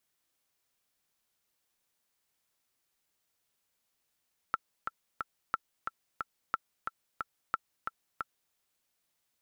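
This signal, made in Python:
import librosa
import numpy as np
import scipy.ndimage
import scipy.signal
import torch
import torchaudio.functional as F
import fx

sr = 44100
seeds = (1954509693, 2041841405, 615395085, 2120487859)

y = fx.click_track(sr, bpm=180, beats=3, bars=4, hz=1340.0, accent_db=6.0, level_db=-15.0)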